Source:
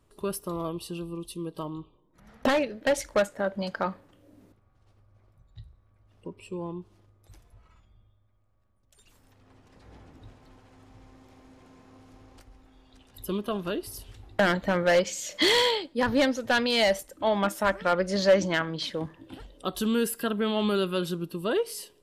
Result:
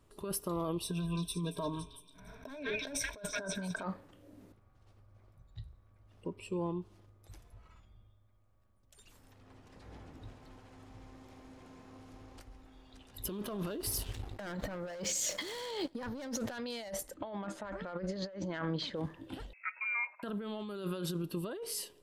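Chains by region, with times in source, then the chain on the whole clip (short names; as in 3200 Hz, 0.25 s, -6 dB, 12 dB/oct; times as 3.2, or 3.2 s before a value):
0.83–3.83 ripple EQ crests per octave 1.6, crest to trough 16 dB + delay with a stepping band-pass 0.17 s, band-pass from 2400 Hz, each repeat 0.7 oct, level -2.5 dB
13.25–16.52 sample leveller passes 2 + compressor 1.5:1, threshold -32 dBFS
17.14–18.96 air absorption 120 m + notch 5500 Hz, Q 8
19.53–20.23 inverted band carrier 2600 Hz + ladder high-pass 490 Hz, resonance 25%
whole clip: dynamic EQ 2700 Hz, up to -5 dB, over -43 dBFS, Q 1.3; negative-ratio compressor -33 dBFS, ratio -1; gain -5.5 dB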